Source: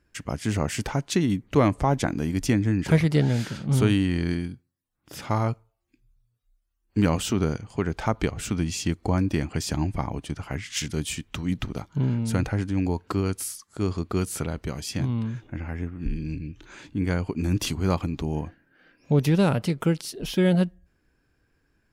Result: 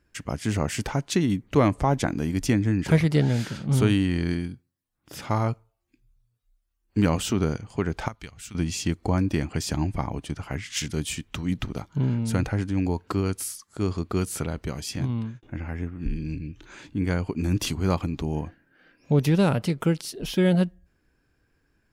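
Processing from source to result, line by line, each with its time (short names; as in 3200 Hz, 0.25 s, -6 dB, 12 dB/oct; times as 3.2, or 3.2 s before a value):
8.08–8.55 passive tone stack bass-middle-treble 5-5-5
14.96–15.43 expander -25 dBFS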